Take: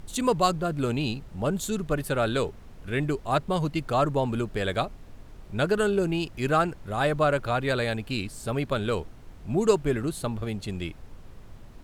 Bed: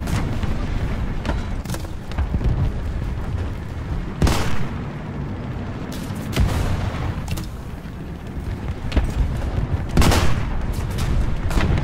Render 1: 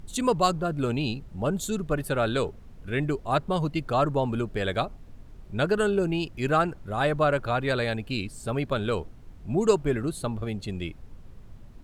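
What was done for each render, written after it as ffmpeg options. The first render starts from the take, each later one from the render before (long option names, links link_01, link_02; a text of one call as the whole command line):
ffmpeg -i in.wav -af "afftdn=noise_reduction=6:noise_floor=-46" out.wav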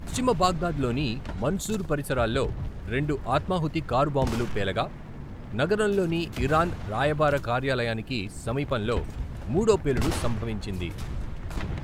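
ffmpeg -i in.wav -i bed.wav -filter_complex "[1:a]volume=-13dB[link_01];[0:a][link_01]amix=inputs=2:normalize=0" out.wav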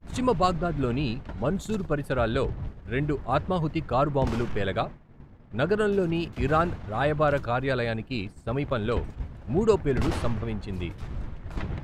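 ffmpeg -i in.wav -af "agate=range=-33dB:threshold=-29dB:ratio=3:detection=peak,lowpass=frequency=3000:poles=1" out.wav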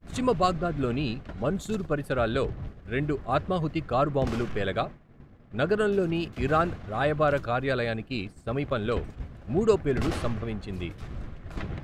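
ffmpeg -i in.wav -af "lowshelf=frequency=130:gain=-4,bandreject=frequency=910:width=7.1" out.wav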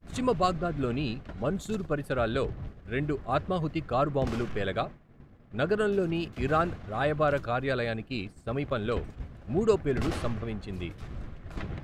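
ffmpeg -i in.wav -af "volume=-2dB" out.wav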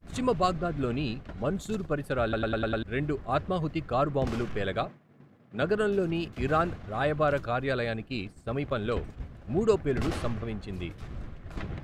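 ffmpeg -i in.wav -filter_complex "[0:a]asettb=1/sr,asplit=3[link_01][link_02][link_03];[link_01]atrim=end=4.874[link_04];[link_02]atrim=start=4.87:end=5.62,asetpts=PTS-STARTPTS,afade=type=in:duration=0.004:curve=qsin,afade=type=out:start_time=0.746:duration=0.004:curve=qsin,highpass=frequency=120:width=0.5412,highpass=frequency=120:width=1.3066[link_05];[link_03]atrim=start=5.616[link_06];[link_04][link_05]acrossfade=duration=0.004:curve1=hsin:curve2=qsin[link_07];[link_07][link_06]acrossfade=duration=0.004:curve1=qsin:curve2=hsin,asplit=7[link_08][link_09][link_10][link_11][link_12][link_13][link_14];[link_08]atrim=end=2.332[link_15];[link_09]atrim=start=2.228:end=2.332[link_16];[link_10]atrim=start=2.228:end=2.332[link_17];[link_11]atrim=start=2.228:end=2.332[link_18];[link_12]atrim=start=2.228:end=2.332[link_19];[link_13]atrim=start=2.228:end=2.332[link_20];[link_14]atrim=start=2.828[link_21];[link_15][link_16]acrossfade=duration=0.004:curve1=hsin:curve2=hsin[link_22];[link_22][link_17]acrossfade=duration=0.004:curve1=hsin:curve2=hsin[link_23];[link_23][link_18]acrossfade=duration=0.004:curve1=hsin:curve2=hsin[link_24];[link_24][link_19]acrossfade=duration=0.004:curve1=hsin:curve2=hsin[link_25];[link_25][link_20]acrossfade=duration=0.004:curve1=hsin:curve2=hsin[link_26];[link_26][link_21]acrossfade=duration=0.004:curve1=hsin:curve2=hsin" out.wav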